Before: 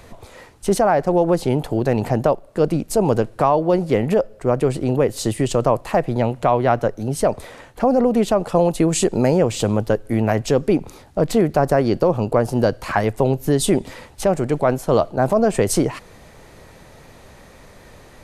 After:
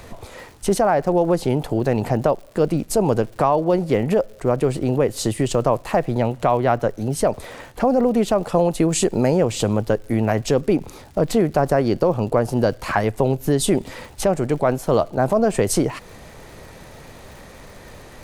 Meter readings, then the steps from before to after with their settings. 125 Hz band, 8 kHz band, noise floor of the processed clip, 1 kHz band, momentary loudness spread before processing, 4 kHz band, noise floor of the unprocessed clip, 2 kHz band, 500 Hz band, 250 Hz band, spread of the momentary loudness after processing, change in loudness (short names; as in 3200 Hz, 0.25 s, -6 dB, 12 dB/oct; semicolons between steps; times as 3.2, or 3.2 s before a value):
-1.0 dB, 0.0 dB, -43 dBFS, -1.0 dB, 5 LU, 0.0 dB, -46 dBFS, -0.5 dB, -1.0 dB, -1.0 dB, 5 LU, -1.0 dB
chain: in parallel at +0.5 dB: compressor, threshold -27 dBFS, peak gain reduction 15 dB; on the sum: crackle 160/s -34 dBFS; gain -3 dB